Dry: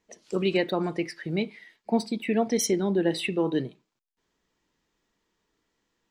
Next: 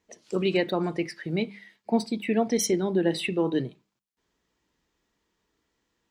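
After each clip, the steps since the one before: HPF 44 Hz; low shelf 66 Hz +10 dB; notches 50/100/150/200 Hz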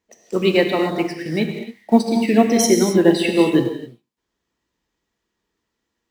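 in parallel at -8.5 dB: bit-crush 7-bit; on the sum: non-linear reverb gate 0.3 s flat, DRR 2.5 dB; upward expander 1.5:1, over -35 dBFS; gain +7 dB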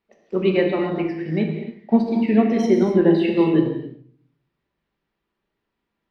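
requantised 12-bit, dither triangular; air absorption 340 m; shoebox room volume 600 m³, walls furnished, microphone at 1.2 m; gain -3 dB

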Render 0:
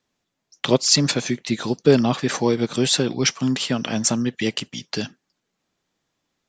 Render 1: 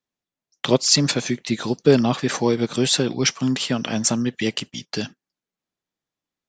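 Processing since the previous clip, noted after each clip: gate -35 dBFS, range -13 dB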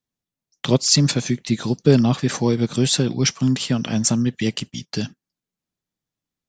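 tone controls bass +10 dB, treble +4 dB; gain -3 dB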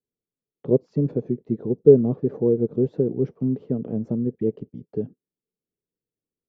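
synth low-pass 440 Hz, resonance Q 4.9; gain -7.5 dB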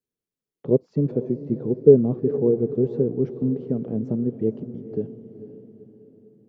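diffused feedback echo 0.484 s, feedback 47%, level -12.5 dB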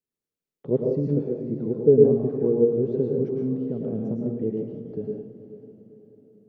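plate-style reverb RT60 0.56 s, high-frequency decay 0.95×, pre-delay 95 ms, DRR -1 dB; gain -4.5 dB

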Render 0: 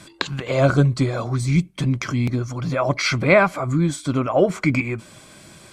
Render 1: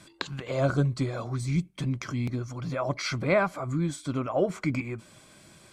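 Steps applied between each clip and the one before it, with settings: dynamic EQ 2400 Hz, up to -4 dB, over -34 dBFS, Q 1.8; gain -8.5 dB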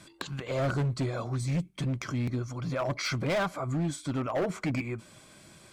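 hard clip -25 dBFS, distortion -10 dB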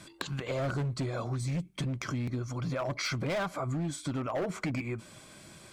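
compressor, threshold -32 dBFS, peak gain reduction 6 dB; gain +2 dB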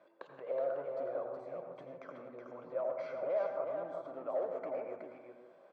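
ladder band-pass 620 Hz, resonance 60%; echo 0.371 s -5 dB; reverb RT60 0.80 s, pre-delay 77 ms, DRR 5.5 dB; gain +3 dB

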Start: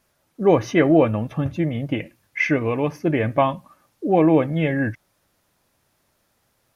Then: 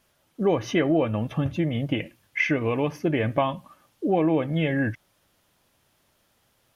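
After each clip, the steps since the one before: bell 3100 Hz +6 dB 0.4 oct; compressor 2.5:1, threshold -21 dBFS, peak gain reduction 8 dB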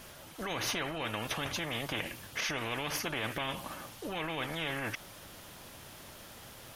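limiter -18 dBFS, peak gain reduction 7.5 dB; spectral compressor 4:1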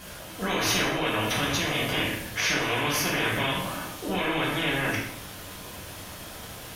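reverb RT60 0.75 s, pre-delay 3 ms, DRR -4.5 dB; gain +3.5 dB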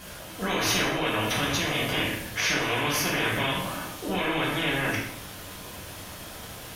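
nothing audible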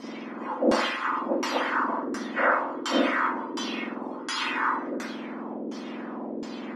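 spectrum mirrored in octaves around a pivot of 1800 Hz; LFO low-pass saw down 1.4 Hz 390–6200 Hz

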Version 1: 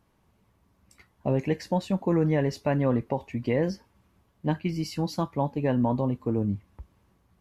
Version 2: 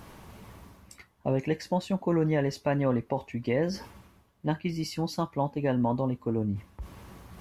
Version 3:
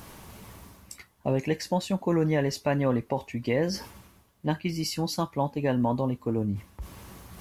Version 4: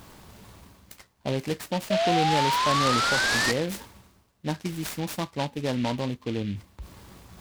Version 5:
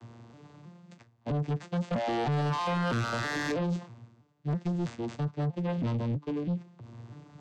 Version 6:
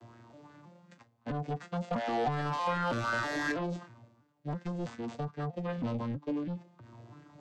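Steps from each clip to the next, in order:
low shelf 440 Hz -3 dB; reverse; upward compressor, threshold -30 dBFS; reverse
high shelf 4300 Hz +9 dB; gain +1 dB
painted sound rise, 1.9–3.52, 620–1900 Hz -22 dBFS; noise-modulated delay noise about 2600 Hz, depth 0.081 ms; gain -2 dB
arpeggiated vocoder major triad, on A#2, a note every 0.323 s; soft clip -28 dBFS, distortion -9 dB; gain +2 dB
flange 0.28 Hz, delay 3 ms, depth 1.3 ms, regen +46%; LFO bell 2.7 Hz 550–1700 Hz +9 dB

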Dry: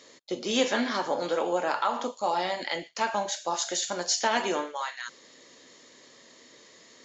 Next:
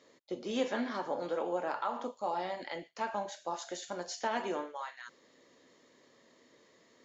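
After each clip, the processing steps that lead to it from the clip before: high shelf 2400 Hz -11.5 dB; gain -6 dB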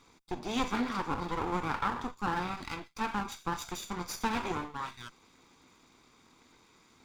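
minimum comb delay 0.85 ms; gain +4 dB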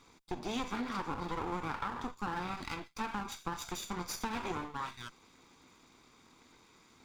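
compressor, threshold -33 dBFS, peak gain reduction 7.5 dB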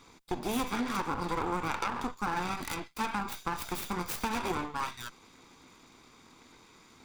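tracing distortion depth 0.42 ms; gain +5 dB

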